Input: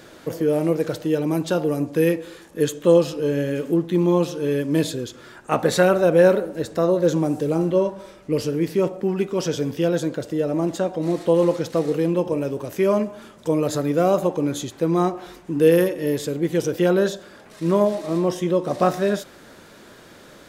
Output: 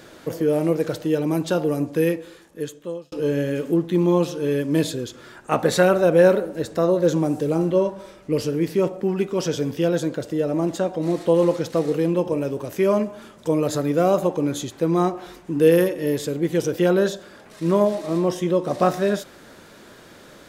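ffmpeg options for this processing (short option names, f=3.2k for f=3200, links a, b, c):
-filter_complex "[0:a]asplit=2[a][b];[a]atrim=end=3.12,asetpts=PTS-STARTPTS,afade=t=out:st=1.84:d=1.28[c];[b]atrim=start=3.12,asetpts=PTS-STARTPTS,afade=t=in:d=0.004:c=hsin[d];[c][d]concat=n=2:v=0:a=1"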